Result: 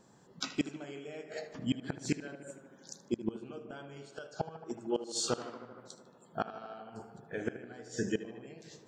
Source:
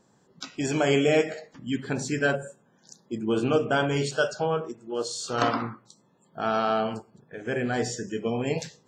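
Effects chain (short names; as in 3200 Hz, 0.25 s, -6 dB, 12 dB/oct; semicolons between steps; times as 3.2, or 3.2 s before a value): flipped gate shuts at -20 dBFS, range -25 dB; tape echo 77 ms, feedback 85%, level -12 dB, low-pass 3400 Hz; gain +1 dB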